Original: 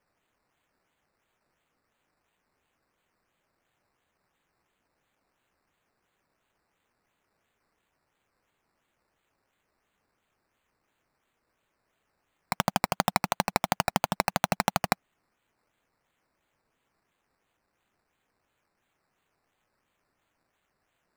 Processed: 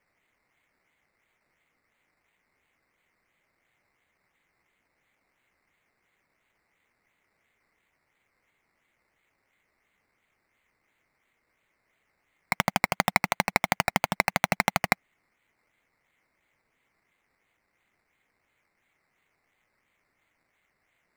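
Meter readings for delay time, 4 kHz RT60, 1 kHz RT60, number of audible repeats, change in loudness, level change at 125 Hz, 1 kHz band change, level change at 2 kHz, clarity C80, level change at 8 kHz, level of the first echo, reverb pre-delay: none, none, none, none, +2.5 dB, 0.0 dB, +0.5 dB, +6.5 dB, none, 0.0 dB, none, none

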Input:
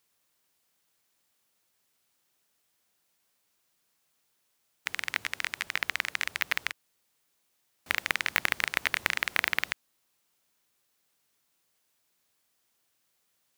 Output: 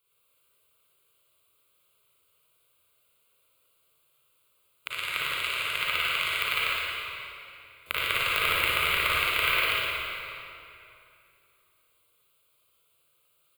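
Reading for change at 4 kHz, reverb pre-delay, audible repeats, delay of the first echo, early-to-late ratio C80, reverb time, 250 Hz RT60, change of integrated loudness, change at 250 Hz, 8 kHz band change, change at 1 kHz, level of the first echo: +7.5 dB, 36 ms, 1, 58 ms, -3.5 dB, 2.7 s, 2.8 s, +4.0 dB, +1.0 dB, +0.5 dB, +7.5 dB, -3.0 dB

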